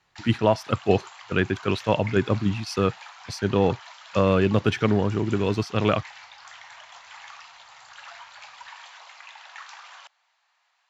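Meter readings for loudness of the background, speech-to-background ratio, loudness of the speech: -43.0 LUFS, 19.0 dB, -24.0 LUFS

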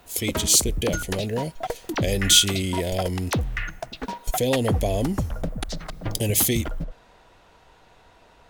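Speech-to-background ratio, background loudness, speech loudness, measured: 8.5 dB, -31.0 LUFS, -22.5 LUFS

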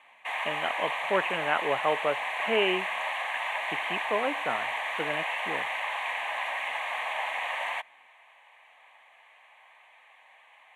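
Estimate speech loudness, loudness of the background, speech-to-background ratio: -31.5 LUFS, -31.0 LUFS, -0.5 dB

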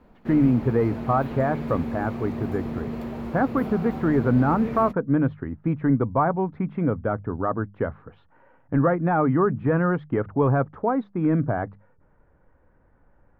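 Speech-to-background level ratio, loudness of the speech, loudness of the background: 8.5 dB, -24.0 LUFS, -32.5 LUFS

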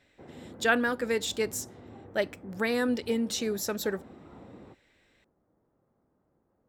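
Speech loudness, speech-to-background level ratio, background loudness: -30.0 LUFS, 19.5 dB, -49.5 LUFS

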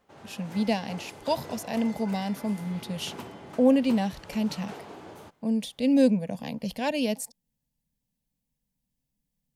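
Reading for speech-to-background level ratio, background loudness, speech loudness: 16.0 dB, -44.0 LUFS, -28.0 LUFS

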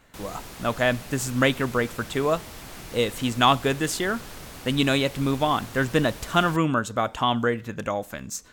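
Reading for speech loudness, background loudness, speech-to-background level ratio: -24.5 LUFS, -40.5 LUFS, 16.0 dB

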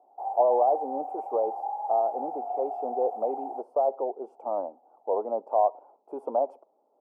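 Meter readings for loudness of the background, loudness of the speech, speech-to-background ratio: -34.5 LUFS, -29.0 LUFS, 5.5 dB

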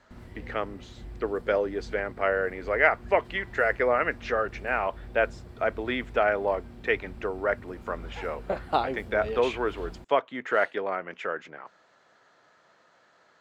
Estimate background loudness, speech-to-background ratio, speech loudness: -45.5 LUFS, 17.5 dB, -28.0 LUFS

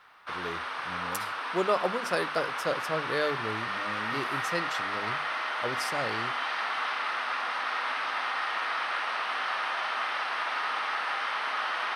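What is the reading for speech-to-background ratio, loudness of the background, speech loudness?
-3.0 dB, -31.0 LUFS, -34.0 LUFS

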